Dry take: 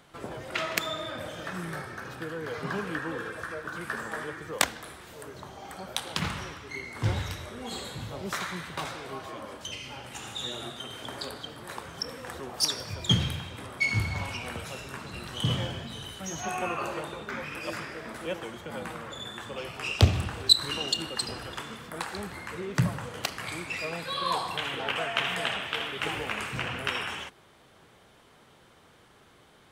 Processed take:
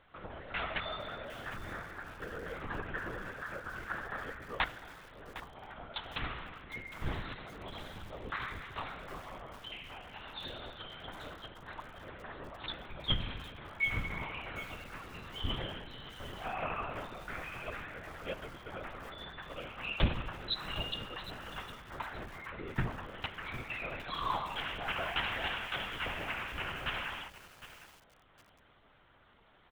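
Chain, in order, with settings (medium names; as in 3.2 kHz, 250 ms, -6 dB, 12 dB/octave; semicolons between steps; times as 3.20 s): LPC vocoder at 8 kHz whisper; peaking EQ 1.4 kHz +4.5 dB 2.4 oct; echo from a far wall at 41 m, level -29 dB; bit-crushed delay 758 ms, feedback 35%, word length 6-bit, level -13 dB; trim -8.5 dB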